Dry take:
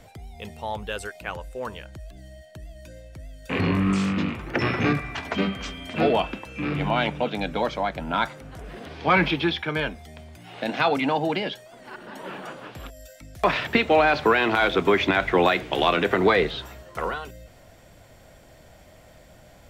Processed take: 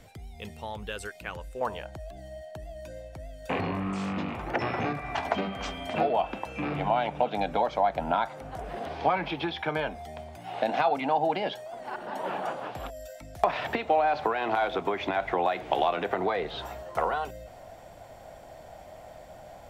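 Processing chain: compression 10:1, threshold -27 dBFS, peak gain reduction 13.5 dB; peaking EQ 750 Hz -3 dB 0.98 oct, from 1.61 s +13 dB; trim -2.5 dB

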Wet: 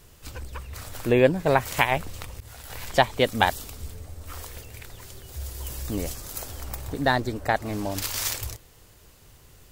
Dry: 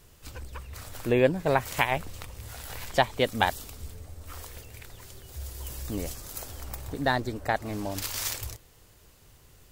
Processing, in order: 2.40–2.87 s: expander -35 dBFS; trim +3.5 dB

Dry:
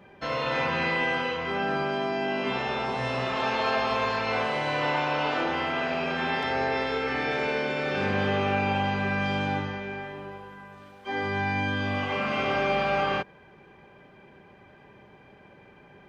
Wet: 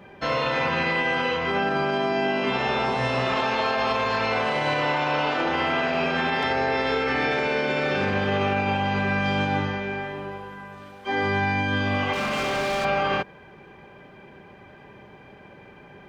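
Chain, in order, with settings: 12.13–12.85 s: hard clipper -29 dBFS, distortion -17 dB; peak limiter -20.5 dBFS, peak gain reduction 6.5 dB; trim +5.5 dB

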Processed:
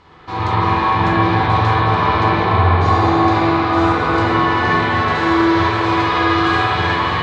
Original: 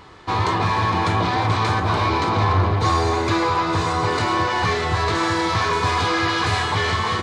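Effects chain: low-pass 6.2 kHz 12 dB/octave; on a send: feedback echo behind a low-pass 329 ms, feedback 64%, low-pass 1.4 kHz, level -5.5 dB; on the sum: spring tank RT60 3.2 s, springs 45/57 ms, chirp 30 ms, DRR -9 dB; trim -5.5 dB

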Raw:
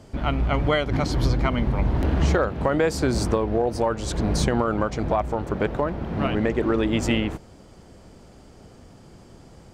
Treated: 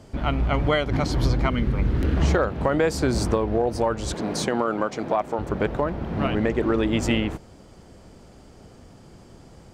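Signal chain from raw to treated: 1.50–2.17 s: high-order bell 790 Hz -9 dB 1 oct; 4.14–5.39 s: high-pass 220 Hz 12 dB/octave

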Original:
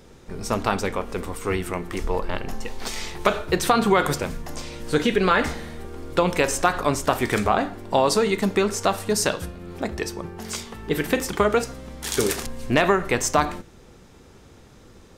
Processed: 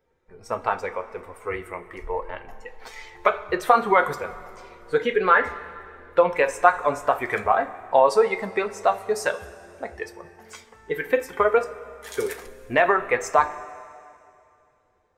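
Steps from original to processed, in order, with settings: expander on every frequency bin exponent 1.5; high-order bell 970 Hz +14 dB 2.9 oct; two-slope reverb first 0.21 s, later 2.5 s, from -17 dB, DRR 7 dB; trim -9.5 dB

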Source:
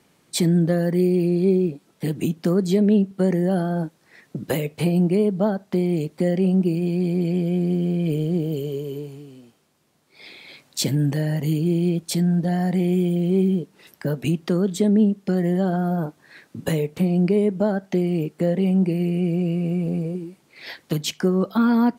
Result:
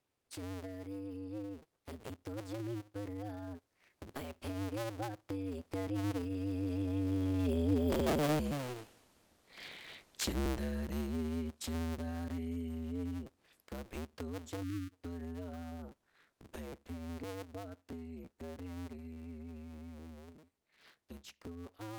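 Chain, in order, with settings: cycle switcher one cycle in 2, inverted; Doppler pass-by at 8.52 s, 26 m/s, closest 6.8 m; in parallel at -2.5 dB: compression, threshold -48 dBFS, peak gain reduction 17.5 dB; on the sum: spectral selection erased 14.63–14.93 s, 380–1100 Hz; trim +1.5 dB

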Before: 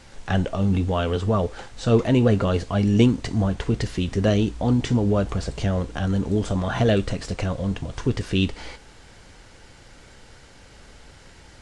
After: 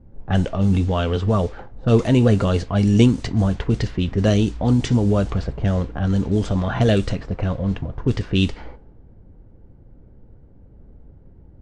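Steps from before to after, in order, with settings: level-controlled noise filter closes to 320 Hz, open at -16 dBFS; tone controls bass +3 dB, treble +5 dB; trim +1 dB

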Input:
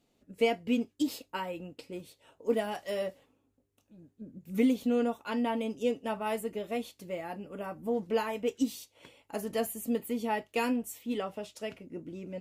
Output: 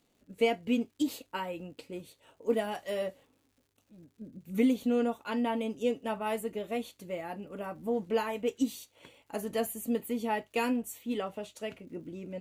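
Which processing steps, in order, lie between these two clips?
band-stop 5.2 kHz, Q 6.9; crackle 210 per s -59 dBFS

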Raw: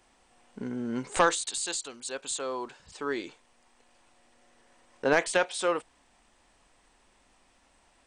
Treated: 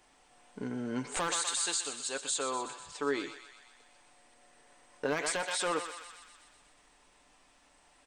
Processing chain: one-sided wavefolder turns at -20 dBFS; bass shelf 220 Hz -4 dB; on a send: thinning echo 124 ms, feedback 68%, high-pass 850 Hz, level -10 dB; on the sum: peak limiter -21 dBFS, peak gain reduction 10.5 dB; comb 6.8 ms, depth 39%

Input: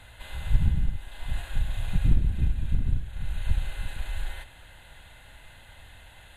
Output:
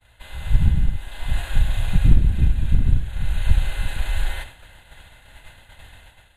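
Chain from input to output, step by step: expander -42 dBFS; level rider gain up to 8.5 dB; trim +1 dB

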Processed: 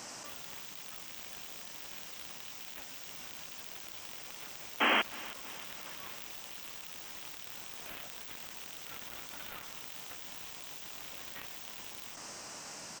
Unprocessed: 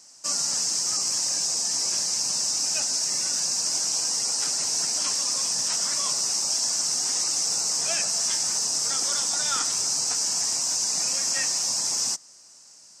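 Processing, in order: Chebyshev shaper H 3 -7 dB, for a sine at -11.5 dBFS; compressor with a negative ratio -52 dBFS, ratio -1; painted sound noise, 4.80–5.02 s, 210–3300 Hz -40 dBFS; high-order bell 7.1 kHz -14.5 dB; feedback delay 317 ms, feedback 60%, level -19 dB; trim +13.5 dB

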